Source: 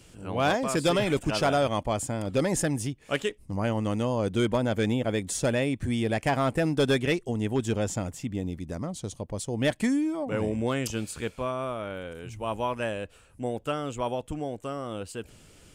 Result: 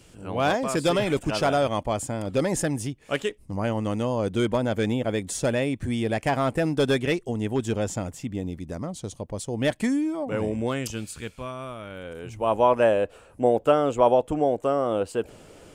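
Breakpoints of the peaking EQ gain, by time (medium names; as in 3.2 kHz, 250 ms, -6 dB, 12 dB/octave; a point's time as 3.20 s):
peaking EQ 590 Hz 2.5 oct
10.62 s +2 dB
11.17 s -5.5 dB
11.89 s -5.5 dB
12.15 s +4 dB
12.72 s +13 dB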